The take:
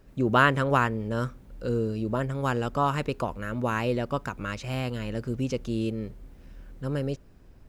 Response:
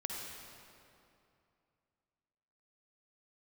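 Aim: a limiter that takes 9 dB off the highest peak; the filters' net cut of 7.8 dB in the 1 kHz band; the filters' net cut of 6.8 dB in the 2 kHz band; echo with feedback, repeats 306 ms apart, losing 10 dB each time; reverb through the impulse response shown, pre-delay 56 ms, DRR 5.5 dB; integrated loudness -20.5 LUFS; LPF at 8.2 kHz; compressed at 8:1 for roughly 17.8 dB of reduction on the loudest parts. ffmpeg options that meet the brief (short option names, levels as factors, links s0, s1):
-filter_complex "[0:a]lowpass=8200,equalizer=f=1000:t=o:g=-8.5,equalizer=f=2000:t=o:g=-5.5,acompressor=threshold=0.0112:ratio=8,alimiter=level_in=5.01:limit=0.0631:level=0:latency=1,volume=0.2,aecho=1:1:306|612|918|1224:0.316|0.101|0.0324|0.0104,asplit=2[s0][s1];[1:a]atrim=start_sample=2205,adelay=56[s2];[s1][s2]afir=irnorm=-1:irlink=0,volume=0.447[s3];[s0][s3]amix=inputs=2:normalize=0,volume=20"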